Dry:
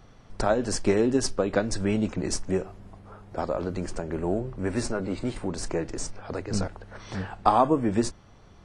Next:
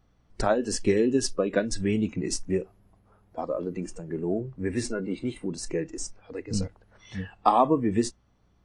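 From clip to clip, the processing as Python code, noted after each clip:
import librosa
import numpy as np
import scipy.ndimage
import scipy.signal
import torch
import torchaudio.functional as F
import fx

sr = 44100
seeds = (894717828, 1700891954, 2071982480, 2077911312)

y = fx.add_hum(x, sr, base_hz=60, snr_db=26)
y = fx.noise_reduce_blind(y, sr, reduce_db=15)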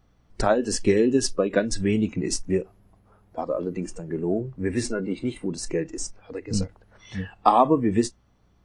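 y = fx.end_taper(x, sr, db_per_s=390.0)
y = y * librosa.db_to_amplitude(3.0)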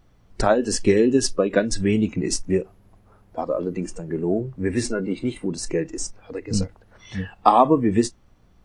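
y = fx.dmg_noise_colour(x, sr, seeds[0], colour='brown', level_db=-60.0)
y = y * librosa.db_to_amplitude(2.5)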